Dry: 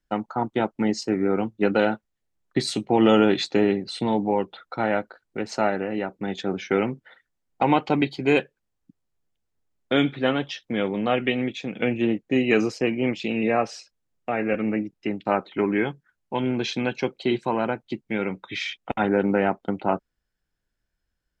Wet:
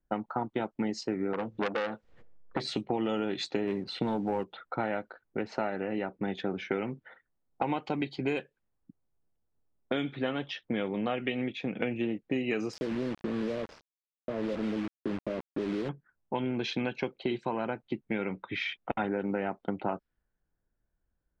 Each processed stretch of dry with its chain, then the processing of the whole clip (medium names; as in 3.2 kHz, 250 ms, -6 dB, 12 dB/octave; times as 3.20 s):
1.33–2.68 s: peaking EQ 490 Hz +10.5 dB 0.34 oct + upward compressor, threshold -21 dBFS + transformer saturation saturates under 1.9 kHz
3.67–4.44 s: treble shelf 4.3 kHz -8.5 dB + waveshaping leveller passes 1
12.73–15.89 s: compression 4:1, threshold -25 dBFS + brick-wall FIR band-stop 680–4200 Hz + word length cut 6-bit, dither none
whole clip: level-controlled noise filter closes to 1.1 kHz, open at -17 dBFS; compression 6:1, threshold -28 dBFS